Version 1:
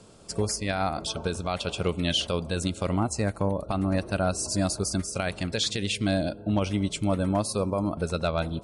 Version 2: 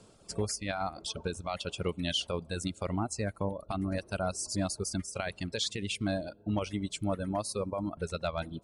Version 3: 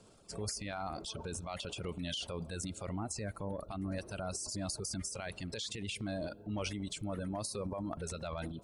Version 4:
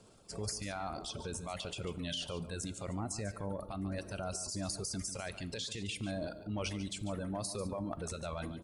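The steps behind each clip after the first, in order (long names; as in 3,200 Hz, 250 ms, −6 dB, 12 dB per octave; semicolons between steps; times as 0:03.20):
reverb reduction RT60 1.6 s; level −5 dB
brickwall limiter −25.5 dBFS, peak gain reduction 6 dB; transient designer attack −2 dB, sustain +10 dB; level −4.5 dB
single-tap delay 144 ms −13 dB; dense smooth reverb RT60 0.62 s, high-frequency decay 0.9×, DRR 15.5 dB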